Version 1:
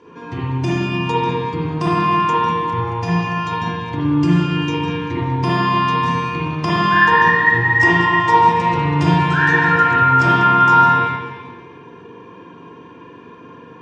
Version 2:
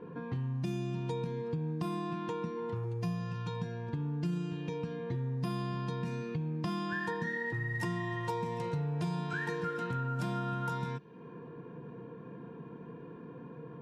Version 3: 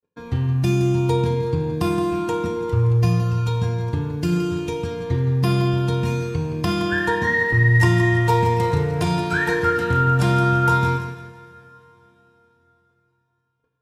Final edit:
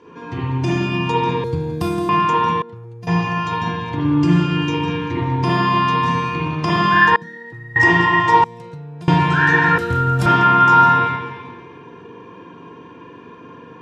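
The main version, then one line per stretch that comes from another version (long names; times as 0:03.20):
1
0:01.44–0:02.09: punch in from 3
0:02.62–0:03.07: punch in from 2
0:07.16–0:07.76: punch in from 2
0:08.44–0:09.08: punch in from 2
0:09.78–0:10.26: punch in from 3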